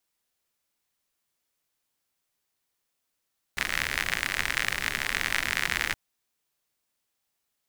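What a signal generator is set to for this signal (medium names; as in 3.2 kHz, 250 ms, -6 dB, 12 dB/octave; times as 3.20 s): rain from filtered ticks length 2.37 s, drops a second 71, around 1.9 kHz, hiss -9.5 dB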